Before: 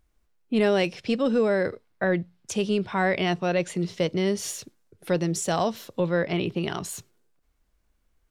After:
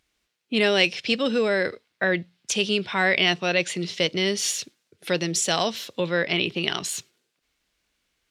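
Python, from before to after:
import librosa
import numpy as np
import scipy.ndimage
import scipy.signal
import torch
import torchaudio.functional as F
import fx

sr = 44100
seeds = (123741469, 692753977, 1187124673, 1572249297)

y = fx.weighting(x, sr, curve='D')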